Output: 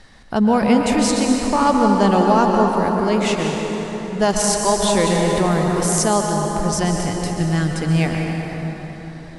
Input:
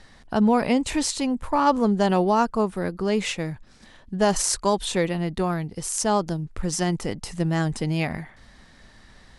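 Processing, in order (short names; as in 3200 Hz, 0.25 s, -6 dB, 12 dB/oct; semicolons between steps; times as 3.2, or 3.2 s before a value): 6.99–7.75 band shelf 620 Hz -8 dB; plate-style reverb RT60 4.5 s, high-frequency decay 0.55×, pre-delay 0.11 s, DRR 0.5 dB; 4.82–6.08 fast leveller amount 50%; gain +3 dB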